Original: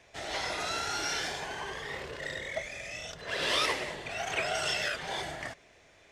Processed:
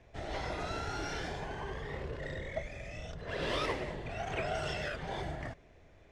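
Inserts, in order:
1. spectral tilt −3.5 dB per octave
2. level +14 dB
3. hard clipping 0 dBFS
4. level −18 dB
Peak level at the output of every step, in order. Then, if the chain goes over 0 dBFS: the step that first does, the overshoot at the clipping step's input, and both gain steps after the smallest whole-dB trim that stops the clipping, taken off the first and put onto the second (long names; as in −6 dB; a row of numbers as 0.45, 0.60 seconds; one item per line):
−17.0, −3.0, −3.0, −21.0 dBFS
no step passes full scale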